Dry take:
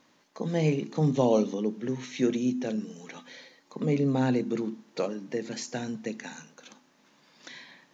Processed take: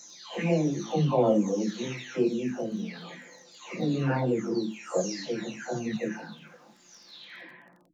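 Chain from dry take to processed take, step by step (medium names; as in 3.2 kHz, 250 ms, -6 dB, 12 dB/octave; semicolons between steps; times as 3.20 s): delay that grows with frequency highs early, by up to 740 ms; chorus voices 6, 1.4 Hz, delay 19 ms, depth 3 ms; crackle 15 per s -53 dBFS; trim +7 dB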